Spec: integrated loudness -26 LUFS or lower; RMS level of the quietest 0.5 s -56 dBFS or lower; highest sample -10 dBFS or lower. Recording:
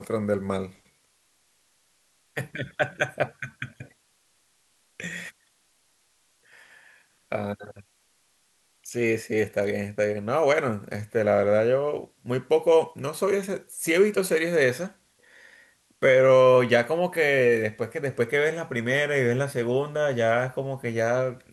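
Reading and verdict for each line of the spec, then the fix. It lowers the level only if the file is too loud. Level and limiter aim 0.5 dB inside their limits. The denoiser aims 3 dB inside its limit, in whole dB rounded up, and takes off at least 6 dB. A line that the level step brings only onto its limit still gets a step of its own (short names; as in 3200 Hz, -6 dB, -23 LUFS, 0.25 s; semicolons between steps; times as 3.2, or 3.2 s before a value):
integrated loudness -24.0 LUFS: fail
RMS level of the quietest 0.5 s -67 dBFS: OK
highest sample -7.5 dBFS: fail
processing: gain -2.5 dB; limiter -10.5 dBFS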